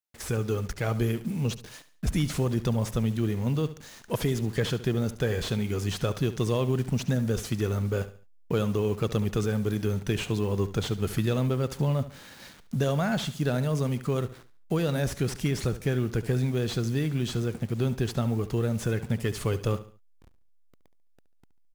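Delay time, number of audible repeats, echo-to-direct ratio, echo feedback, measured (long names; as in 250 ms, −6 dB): 71 ms, 3, −14.0 dB, 35%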